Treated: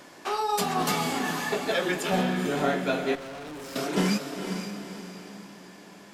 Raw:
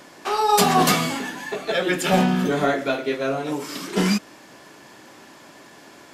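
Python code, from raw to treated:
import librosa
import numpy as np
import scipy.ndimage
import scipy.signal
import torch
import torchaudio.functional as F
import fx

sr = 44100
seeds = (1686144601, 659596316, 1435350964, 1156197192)

y = fx.rider(x, sr, range_db=10, speed_s=0.5)
y = fx.echo_diffused(y, sr, ms=482, feedback_pct=45, wet_db=-7)
y = fx.tube_stage(y, sr, drive_db=32.0, bias=0.8, at=(3.15, 3.76))
y = y * librosa.db_to_amplitude(-6.0)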